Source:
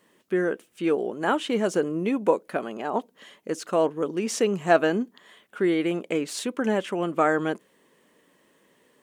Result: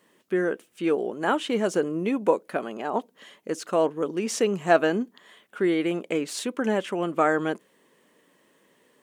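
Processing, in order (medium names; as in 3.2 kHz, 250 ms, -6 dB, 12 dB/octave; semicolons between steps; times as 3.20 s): bass shelf 87 Hz -5.5 dB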